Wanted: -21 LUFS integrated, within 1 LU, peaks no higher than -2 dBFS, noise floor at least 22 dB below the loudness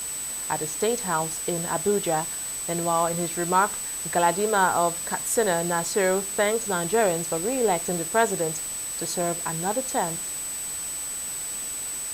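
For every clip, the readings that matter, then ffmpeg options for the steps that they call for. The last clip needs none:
steady tone 8000 Hz; tone level -30 dBFS; noise floor -32 dBFS; noise floor target -47 dBFS; loudness -25.0 LUFS; peak -7.0 dBFS; loudness target -21.0 LUFS
-> -af "bandreject=f=8k:w=30"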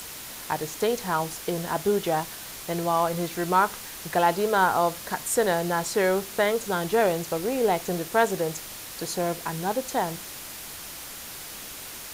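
steady tone none; noise floor -40 dBFS; noise floor target -49 dBFS
-> -af "afftdn=nr=9:nf=-40"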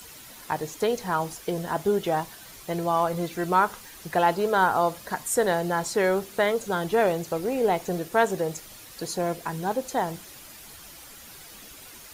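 noise floor -46 dBFS; noise floor target -48 dBFS
-> -af "afftdn=nr=6:nf=-46"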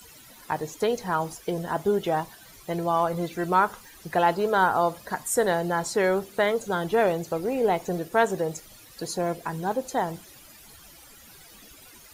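noise floor -50 dBFS; loudness -26.0 LUFS; peak -8.0 dBFS; loudness target -21.0 LUFS
-> -af "volume=5dB"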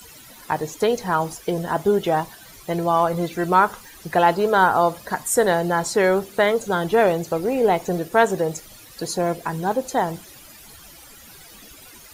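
loudness -21.0 LUFS; peak -3.0 dBFS; noise floor -45 dBFS

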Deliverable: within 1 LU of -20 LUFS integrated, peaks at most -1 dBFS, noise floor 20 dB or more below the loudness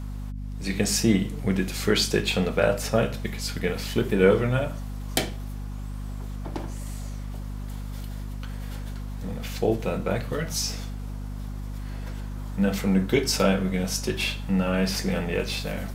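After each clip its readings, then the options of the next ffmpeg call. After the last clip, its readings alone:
hum 50 Hz; harmonics up to 250 Hz; hum level -31 dBFS; loudness -27.0 LUFS; peak -3.0 dBFS; loudness target -20.0 LUFS
-> -af "bandreject=f=50:t=h:w=4,bandreject=f=100:t=h:w=4,bandreject=f=150:t=h:w=4,bandreject=f=200:t=h:w=4,bandreject=f=250:t=h:w=4"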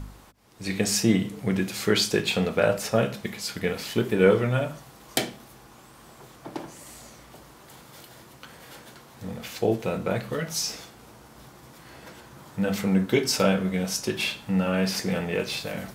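hum none; loudness -25.5 LUFS; peak -3.0 dBFS; loudness target -20.0 LUFS
-> -af "volume=5.5dB,alimiter=limit=-1dB:level=0:latency=1"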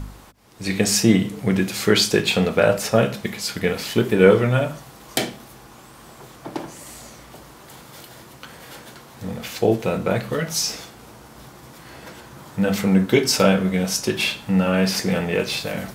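loudness -20.0 LUFS; peak -1.0 dBFS; noise floor -45 dBFS

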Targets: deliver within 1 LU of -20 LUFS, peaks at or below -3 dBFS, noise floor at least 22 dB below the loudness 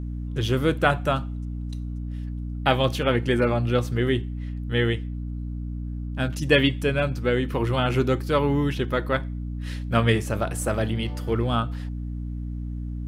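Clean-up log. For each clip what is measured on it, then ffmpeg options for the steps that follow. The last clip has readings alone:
hum 60 Hz; harmonics up to 300 Hz; hum level -28 dBFS; loudness -25.5 LUFS; peak -5.0 dBFS; loudness target -20.0 LUFS
-> -af "bandreject=f=60:t=h:w=6,bandreject=f=120:t=h:w=6,bandreject=f=180:t=h:w=6,bandreject=f=240:t=h:w=6,bandreject=f=300:t=h:w=6"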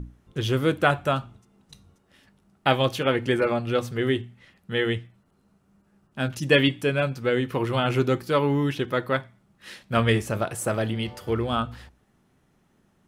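hum none; loudness -25.0 LUFS; peak -4.5 dBFS; loudness target -20.0 LUFS
-> -af "volume=5dB,alimiter=limit=-3dB:level=0:latency=1"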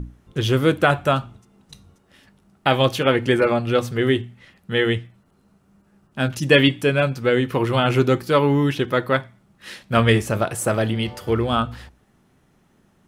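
loudness -20.0 LUFS; peak -3.0 dBFS; noise floor -60 dBFS

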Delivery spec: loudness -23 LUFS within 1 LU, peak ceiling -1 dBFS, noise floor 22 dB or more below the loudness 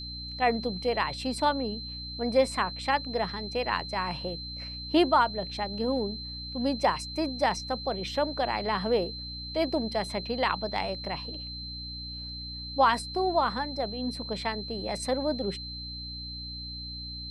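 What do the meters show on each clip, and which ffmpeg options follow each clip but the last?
hum 60 Hz; harmonics up to 300 Hz; hum level -40 dBFS; steady tone 4100 Hz; tone level -38 dBFS; loudness -30.0 LUFS; peak -11.5 dBFS; loudness target -23.0 LUFS
-> -af "bandreject=f=60:t=h:w=4,bandreject=f=120:t=h:w=4,bandreject=f=180:t=h:w=4,bandreject=f=240:t=h:w=4,bandreject=f=300:t=h:w=4"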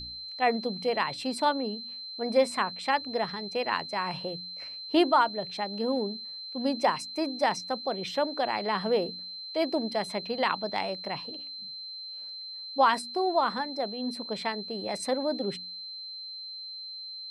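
hum none; steady tone 4100 Hz; tone level -38 dBFS
-> -af "bandreject=f=4.1k:w=30"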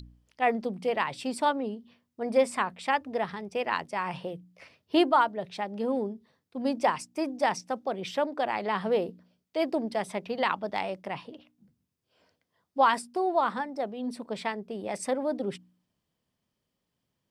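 steady tone none; loudness -29.5 LUFS; peak -11.5 dBFS; loudness target -23.0 LUFS
-> -af "volume=6.5dB"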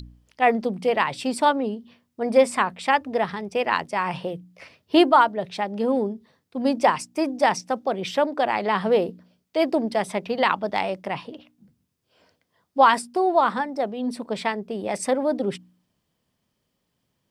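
loudness -23.0 LUFS; peak -5.0 dBFS; noise floor -76 dBFS

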